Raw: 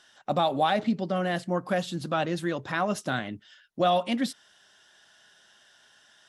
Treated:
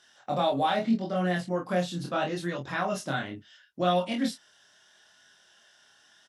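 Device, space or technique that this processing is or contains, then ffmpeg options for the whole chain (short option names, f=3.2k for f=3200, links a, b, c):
double-tracked vocal: -filter_complex "[0:a]highpass=50,equalizer=f=5.7k:t=o:w=0.3:g=3,asplit=2[a][b];[b]adelay=22,volume=-4.5dB[c];[a][c]amix=inputs=2:normalize=0,flanger=delay=22.5:depth=6.8:speed=0.76"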